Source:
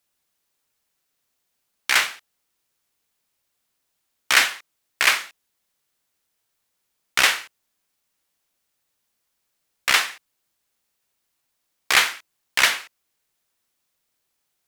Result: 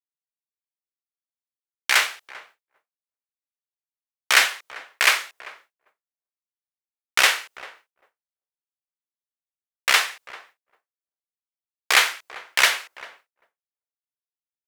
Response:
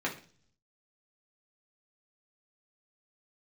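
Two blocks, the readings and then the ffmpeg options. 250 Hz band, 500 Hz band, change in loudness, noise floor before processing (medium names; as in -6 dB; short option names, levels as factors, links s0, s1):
no reading, +1.5 dB, 0.0 dB, -76 dBFS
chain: -filter_complex "[0:a]lowshelf=f=330:t=q:w=1.5:g=-8,asplit=2[s0][s1];[s1]adelay=393,lowpass=f=810:p=1,volume=0.2,asplit=2[s2][s3];[s3]adelay=393,lowpass=f=810:p=1,volume=0.27,asplit=2[s4][s5];[s5]adelay=393,lowpass=f=810:p=1,volume=0.27[s6];[s2][s4][s6]amix=inputs=3:normalize=0[s7];[s0][s7]amix=inputs=2:normalize=0,agate=range=0.0224:threshold=0.00398:ratio=3:detection=peak"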